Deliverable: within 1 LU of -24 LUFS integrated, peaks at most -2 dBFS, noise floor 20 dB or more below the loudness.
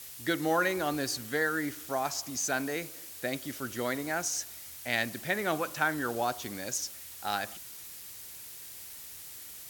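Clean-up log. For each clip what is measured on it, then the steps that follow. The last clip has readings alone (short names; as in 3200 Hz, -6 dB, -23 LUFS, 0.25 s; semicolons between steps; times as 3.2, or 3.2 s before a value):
noise floor -46 dBFS; noise floor target -53 dBFS; loudness -33.0 LUFS; peak -12.5 dBFS; loudness target -24.0 LUFS
-> denoiser 7 dB, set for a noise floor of -46 dBFS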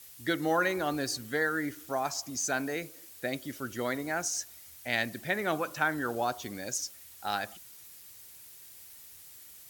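noise floor -52 dBFS; noise floor target -53 dBFS
-> denoiser 6 dB, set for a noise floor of -52 dBFS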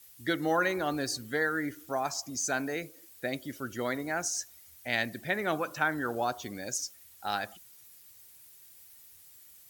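noise floor -56 dBFS; loudness -32.5 LUFS; peak -13.0 dBFS; loudness target -24.0 LUFS
-> gain +8.5 dB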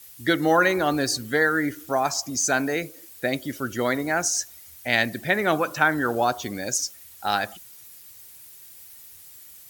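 loudness -24.0 LUFS; peak -4.5 dBFS; noise floor -47 dBFS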